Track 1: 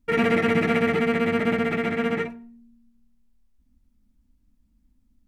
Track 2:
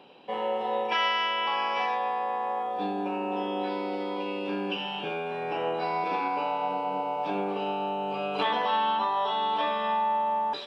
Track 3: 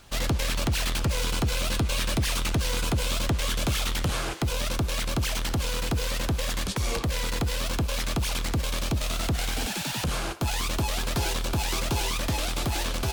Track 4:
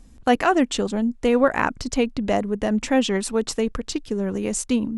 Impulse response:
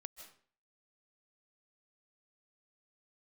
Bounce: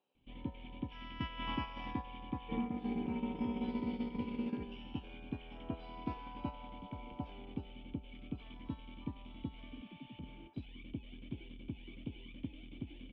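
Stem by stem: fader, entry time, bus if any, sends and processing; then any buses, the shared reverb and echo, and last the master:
+1.0 dB, 2.40 s, bus A, no send, low-pass 1.7 kHz
1.10 s -17.5 dB -> 1.45 s -10.5 dB -> 7.24 s -10.5 dB -> 7.91 s -22 dB, 0.00 s, no bus, no send, feedback comb 66 Hz, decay 0.3 s, harmonics all, mix 70%
-0.5 dB, 0.15 s, bus A, no send, none
mute
bus A: 0.0 dB, cascade formant filter i; compression 20:1, threshold -33 dBFS, peak gain reduction 12.5 dB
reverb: none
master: gate -36 dBFS, range -9 dB

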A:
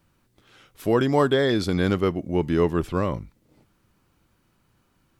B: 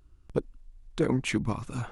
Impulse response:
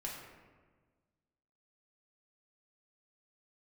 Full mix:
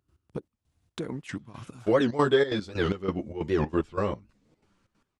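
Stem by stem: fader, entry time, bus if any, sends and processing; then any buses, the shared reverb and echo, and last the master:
+1.0 dB, 1.00 s, no send, low-pass 8.6 kHz 24 dB/octave; bass shelf 160 Hz -4 dB; three-phase chorus
+0.5 dB, 0.00 s, no send, high-pass 79 Hz 24 dB/octave; compression 4:1, threshold -33 dBFS, peak gain reduction 10.5 dB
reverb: none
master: trance gate ".x..xx..xxx.xxx" 185 bpm -12 dB; warped record 78 rpm, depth 250 cents

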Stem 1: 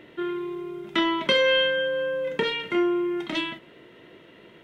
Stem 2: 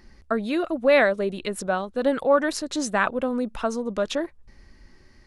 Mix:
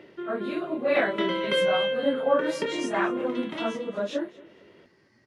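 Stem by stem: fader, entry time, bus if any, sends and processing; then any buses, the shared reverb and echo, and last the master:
-1.5 dB, 0.00 s, no send, echo send -4.5 dB, high-pass 110 Hz; small resonant body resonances 400/560 Hz, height 6 dB; auto duck -12 dB, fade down 0.40 s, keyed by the second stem
-5.0 dB, 0.00 s, no send, echo send -21.5 dB, phase randomisation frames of 100 ms; high-pass 110 Hz 24 dB/octave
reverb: none
echo: feedback delay 227 ms, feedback 22%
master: treble shelf 5 kHz -7.5 dB

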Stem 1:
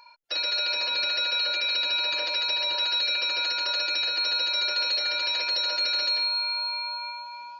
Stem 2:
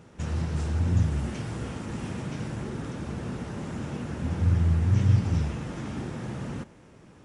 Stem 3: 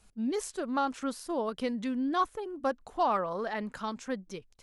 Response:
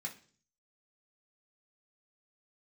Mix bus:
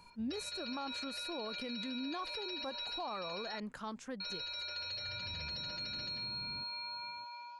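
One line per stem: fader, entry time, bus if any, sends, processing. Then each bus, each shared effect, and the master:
-8.5 dB, 0.00 s, muted 3.60–4.20 s, no send, compression, threshold -31 dBFS, peak gain reduction 8 dB
-17.0 dB, 0.00 s, no send, compression, threshold -25 dBFS, peak gain reduction 9.5 dB; slew-rate limiter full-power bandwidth 4.5 Hz; auto duck -24 dB, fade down 0.75 s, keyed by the third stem
-5.5 dB, 0.00 s, no send, none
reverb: none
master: peak limiter -32.5 dBFS, peak gain reduction 10.5 dB

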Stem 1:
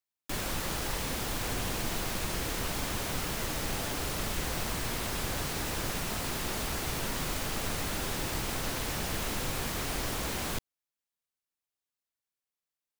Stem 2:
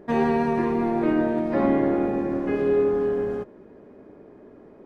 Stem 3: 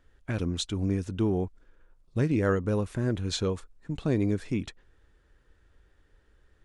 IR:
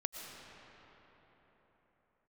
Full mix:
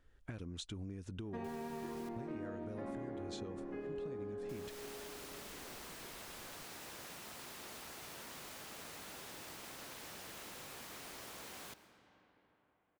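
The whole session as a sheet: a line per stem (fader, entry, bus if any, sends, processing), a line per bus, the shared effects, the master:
-17.5 dB, 1.15 s, muted 2.09–4.49 s, send -6 dB, high-pass 340 Hz 6 dB/octave
-13.5 dB, 1.25 s, send -17.5 dB, none
-6.0 dB, 0.00 s, no send, compression, threshold -30 dBFS, peak gain reduction 9.5 dB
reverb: on, pre-delay 75 ms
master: compression 4:1, threshold -42 dBFS, peak gain reduction 11 dB

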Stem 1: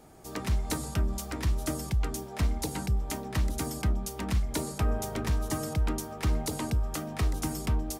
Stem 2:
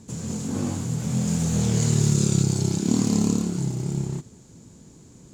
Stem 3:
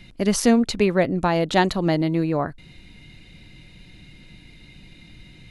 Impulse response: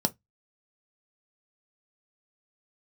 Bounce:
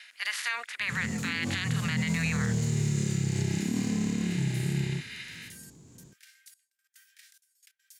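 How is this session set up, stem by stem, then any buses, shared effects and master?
-8.5 dB, 0.00 s, no send, steep high-pass 1.5 kHz 96 dB/octave; tilt EQ +2 dB/octave; trance gate ".x.xxxxx.." 179 bpm -24 dB
-1.5 dB, 0.80 s, no send, none
-4.5 dB, 0.00 s, no send, spectral peaks clipped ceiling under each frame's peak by 26 dB; level rider gain up to 7 dB; resonant high-pass 1.8 kHz, resonance Q 2.9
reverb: none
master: gate with hold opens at -54 dBFS; harmonic-percussive split percussive -14 dB; peak limiter -19.5 dBFS, peak gain reduction 11.5 dB

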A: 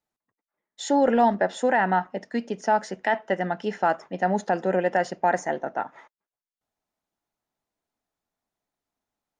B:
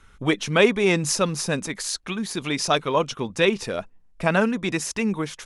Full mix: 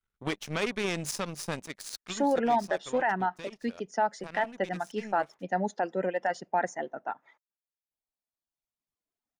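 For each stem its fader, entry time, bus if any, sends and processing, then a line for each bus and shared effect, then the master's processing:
-5.0 dB, 1.30 s, no send, reverb removal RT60 1.8 s
2.13 s -2.5 dB -> 2.61 s -14.5 dB, 0.00 s, no send, peak limiter -14.5 dBFS, peak gain reduction 10 dB; power-law waveshaper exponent 2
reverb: none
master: none

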